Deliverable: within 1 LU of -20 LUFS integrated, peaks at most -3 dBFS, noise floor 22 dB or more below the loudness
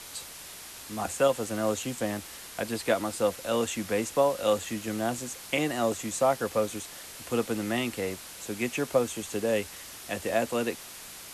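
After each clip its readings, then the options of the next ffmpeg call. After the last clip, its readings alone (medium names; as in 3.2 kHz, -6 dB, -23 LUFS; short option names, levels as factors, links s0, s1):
noise floor -45 dBFS; noise floor target -52 dBFS; loudness -29.5 LUFS; peak level -11.0 dBFS; loudness target -20.0 LUFS
-> -af "afftdn=nr=7:nf=-45"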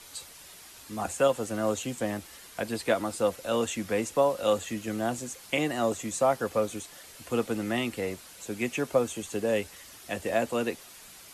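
noise floor -49 dBFS; noise floor target -52 dBFS
-> -af "afftdn=nr=6:nf=-49"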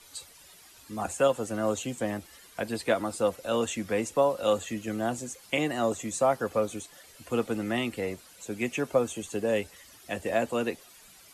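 noise floor -54 dBFS; loudness -29.5 LUFS; peak level -11.0 dBFS; loudness target -20.0 LUFS
-> -af "volume=2.99,alimiter=limit=0.708:level=0:latency=1"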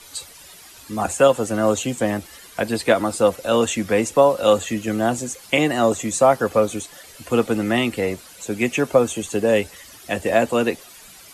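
loudness -20.0 LUFS; peak level -3.0 dBFS; noise floor -44 dBFS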